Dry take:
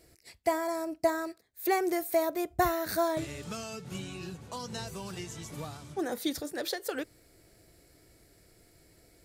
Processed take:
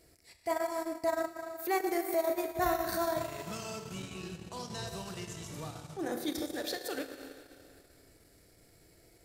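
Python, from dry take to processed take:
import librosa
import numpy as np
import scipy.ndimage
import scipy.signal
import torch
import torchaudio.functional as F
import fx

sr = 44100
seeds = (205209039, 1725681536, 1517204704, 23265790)

y = fx.rev_schroeder(x, sr, rt60_s=2.1, comb_ms=26, drr_db=3.0)
y = fx.transient(y, sr, attack_db=-7, sustain_db=-11)
y = y * librosa.db_to_amplitude(-1.5)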